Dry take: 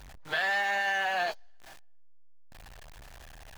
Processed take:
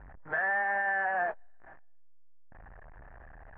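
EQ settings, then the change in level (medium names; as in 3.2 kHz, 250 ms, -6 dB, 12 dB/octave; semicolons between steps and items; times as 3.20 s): elliptic low-pass 1.8 kHz, stop band 80 dB; 0.0 dB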